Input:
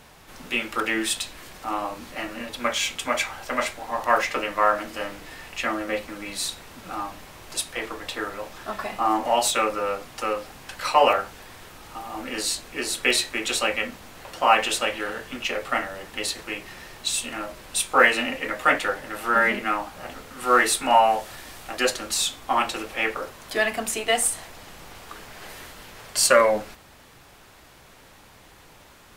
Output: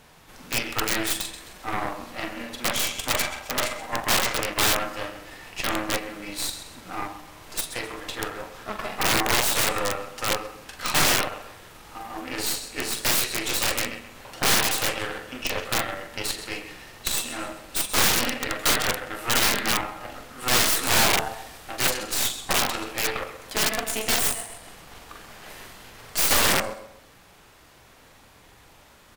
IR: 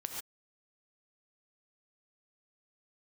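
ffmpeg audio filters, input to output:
-filter_complex "[0:a]asplit=2[s0][s1];[s1]adelay=43,volume=0.447[s2];[s0][s2]amix=inputs=2:normalize=0,aecho=1:1:131|262|393|524:0.299|0.104|0.0366|0.0128,asplit=2[s3][s4];[1:a]atrim=start_sample=2205,atrim=end_sample=3969[s5];[s4][s5]afir=irnorm=-1:irlink=0,volume=0.562[s6];[s3][s6]amix=inputs=2:normalize=0,aeval=exprs='1.12*(cos(1*acos(clip(val(0)/1.12,-1,1)))-cos(1*PI/2))+0.501*(cos(6*acos(clip(val(0)/1.12,-1,1)))-cos(6*PI/2))':c=same,aeval=exprs='(mod(1.78*val(0)+1,2)-1)/1.78':c=same,volume=0.473"

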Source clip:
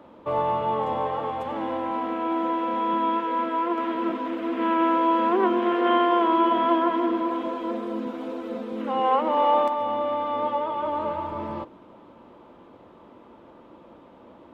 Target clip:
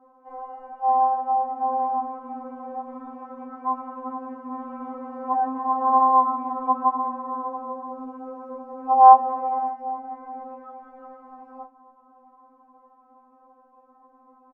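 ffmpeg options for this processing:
-filter_complex "[0:a]asplit=2[s0][s1];[s1]asetrate=33038,aresample=44100,atempo=1.33484,volume=0.398[s2];[s0][s2]amix=inputs=2:normalize=0,firequalizer=gain_entry='entry(170,0);entry(350,-12);entry(810,13);entry(2000,-15);entry(3400,-28);entry(5300,-13)':delay=0.05:min_phase=1,afftfilt=real='re*3.46*eq(mod(b,12),0)':imag='im*3.46*eq(mod(b,12),0)':win_size=2048:overlap=0.75,volume=0.531"

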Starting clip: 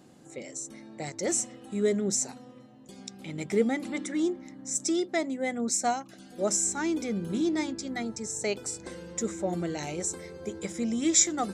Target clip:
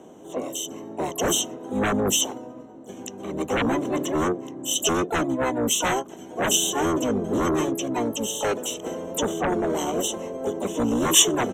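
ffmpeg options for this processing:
-filter_complex "[0:a]lowpass=f=6100:t=q:w=10,asplit=4[s0][s1][s2][s3];[s1]asetrate=22050,aresample=44100,atempo=2,volume=0.794[s4];[s2]asetrate=55563,aresample=44100,atempo=0.793701,volume=0.708[s5];[s3]asetrate=88200,aresample=44100,atempo=0.5,volume=0.282[s6];[s0][s4][s5][s6]amix=inputs=4:normalize=0,acrossover=split=240|1100[s7][s8][s9];[s8]aeval=exprs='0.282*sin(PI/2*5.62*val(0)/0.282)':c=same[s10];[s7][s10][s9]amix=inputs=3:normalize=0,asuperstop=centerf=4800:order=4:qfactor=3,volume=0.376"

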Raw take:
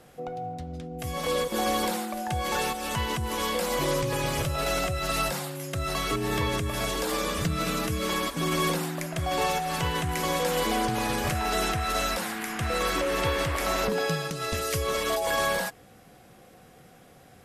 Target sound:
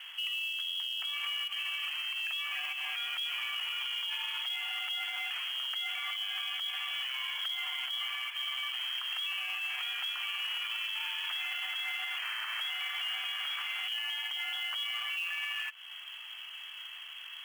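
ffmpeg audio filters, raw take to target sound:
-af "acompressor=threshold=0.01:ratio=5,lowpass=f=2900:t=q:w=0.5098,lowpass=f=2900:t=q:w=0.6013,lowpass=f=2900:t=q:w=0.9,lowpass=f=2900:t=q:w=2.563,afreqshift=-3400,acrusher=bits=4:mode=log:mix=0:aa=0.000001,highpass=f=880:w=0.5412,highpass=f=880:w=1.3066,alimiter=level_in=3.55:limit=0.0631:level=0:latency=1:release=53,volume=0.282,volume=2.51"

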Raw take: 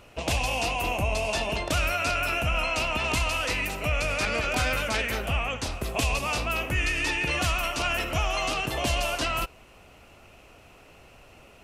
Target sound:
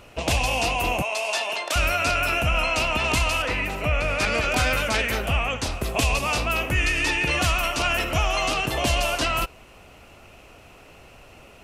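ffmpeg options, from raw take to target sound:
-filter_complex "[0:a]asettb=1/sr,asplit=3[s0][s1][s2];[s0]atrim=end=1.024[s3];[s1]atrim=start=1.02:end=1.76,asetpts=PTS-STARTPTS,afade=t=in:d=0.004:c=qsin,afade=t=out:st=0.736:d=0.004:c=qsin,highpass=680[s4];[s2]atrim=start=1.756[s5];[s3][s4]acrossfade=d=0.004:c1=hsin:c2=qsin[s6];[s6][s5]acrossfade=d=0.004:c1=qsin:c2=hsin,asettb=1/sr,asplit=3[s7][s8][s9];[s7]atrim=end=3.424[s10];[s8]atrim=start=3.42:end=4.2,asetpts=PTS-STARTPTS,afade=t=in:d=0.004:c=qsin,afade=t=out:st=0.776:d=0.004:c=qsin,acrossover=split=3000[s11][s12];[s12]acompressor=threshold=0.00562:ratio=4:attack=1:release=60[s13];[s11][s13]amix=inputs=2:normalize=0[s14];[s9]atrim=start=4.196[s15];[s10][s14]acrossfade=d=0.004:c1=hsin:c2=qsin[s16];[s16][s15]acrossfade=d=0.004:c1=qsin:c2=hsin,volume=1.58"

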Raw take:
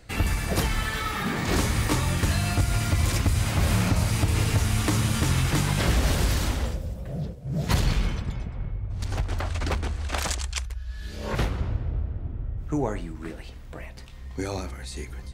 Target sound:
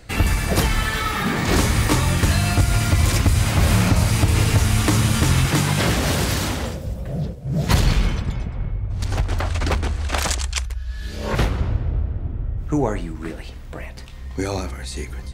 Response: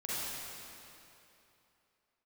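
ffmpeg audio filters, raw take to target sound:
-filter_complex "[0:a]asettb=1/sr,asplit=3[s0][s1][s2];[s0]atrim=end=5.454[s3];[s1]atrim=start=5.45:end=6.87,asetpts=PTS-STARTPTS,afade=t=in:d=0.004:c=qsin,afade=t=out:st=1.416:d=0.004:c=qsin,highpass=93[s4];[s2]atrim=start=6.866[s5];[s3][s4]acrossfade=d=0.004:c1=hsin:c2=qsin[s6];[s6][s5]acrossfade=d=0.004:c1=qsin:c2=hsin,volume=2"

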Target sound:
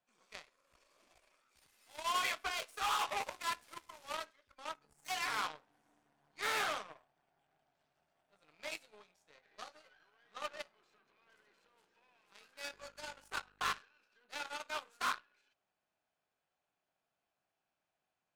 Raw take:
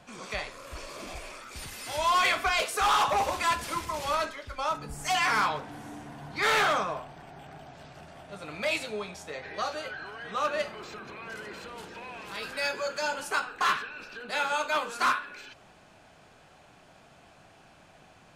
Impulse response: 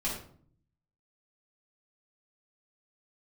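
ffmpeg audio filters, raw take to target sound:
-filter_complex "[0:a]asettb=1/sr,asplit=3[s0][s1][s2];[s0]atrim=end=12.724[s3];[s1]atrim=start=12.72:end=13.79,asetpts=PTS-STARTPTS,afade=t=in:d=0.004:c=qsin,afade=t=out:st=1.066:d=0.004:c=qsin,aeval=exprs='val(0)+0.0112*(sin(2*PI*50*n/s)+sin(2*PI*2*50*n/s)/2+sin(2*PI*3*50*n/s)/3+sin(2*PI*4*50*n/s)/4+sin(2*PI*5*50*n/s)/5)':c=same[s4];[s2]atrim=start=13.786[s5];[s3][s4]acrossfade=d=0.004:c1=hsin:c2=qsin[s6];[s6][s5]acrossfade=d=0.004:c1=qsin:c2=hsin,aeval=exprs='0.15*(cos(1*acos(clip(val(0)/0.15,-1,1)))-cos(1*PI/2))+0.0473*(cos(3*acos(clip(val(0)/0.15,-1,1)))-cos(3*PI/2))+0.00168*(cos(8*acos(clip(val(0)/0.15,-1,1)))-cos(8*PI/2))':c=same,lowshelf=f=240:g=-10.5,volume=0.531"

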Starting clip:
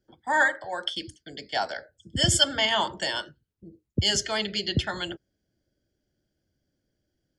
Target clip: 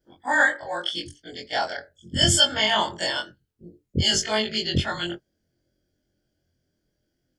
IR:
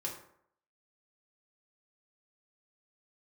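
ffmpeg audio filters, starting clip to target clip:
-af "afftfilt=real='re':imag='-im':win_size=2048:overlap=0.75,volume=2.24"

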